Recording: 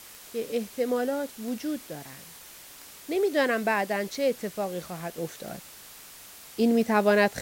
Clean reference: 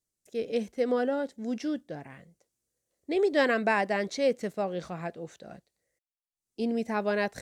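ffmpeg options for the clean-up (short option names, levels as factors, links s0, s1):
-af "adeclick=t=4,afwtdn=0.005,asetnsamples=n=441:p=0,asendcmd='5.18 volume volume -7dB',volume=1"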